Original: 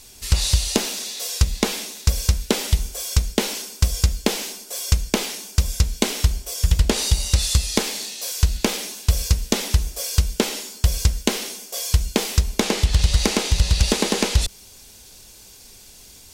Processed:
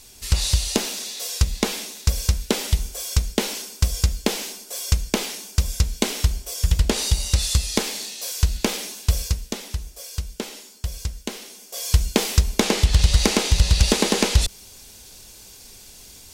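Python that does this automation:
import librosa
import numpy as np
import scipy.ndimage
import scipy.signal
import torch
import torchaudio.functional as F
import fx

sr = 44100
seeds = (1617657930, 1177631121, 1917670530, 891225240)

y = fx.gain(x, sr, db=fx.line((9.15, -1.5), (9.59, -10.0), (11.48, -10.0), (11.97, 1.0)))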